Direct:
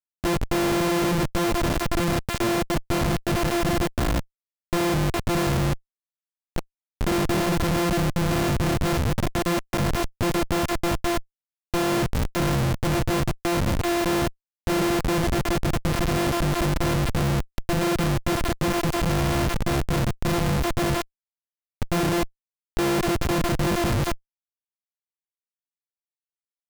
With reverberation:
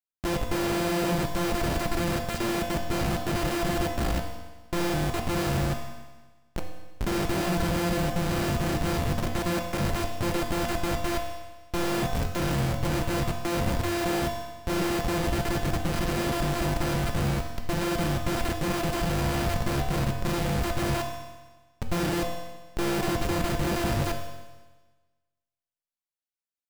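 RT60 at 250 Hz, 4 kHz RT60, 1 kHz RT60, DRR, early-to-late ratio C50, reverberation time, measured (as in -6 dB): 1.3 s, 1.3 s, 1.3 s, 2.5 dB, 5.5 dB, 1.3 s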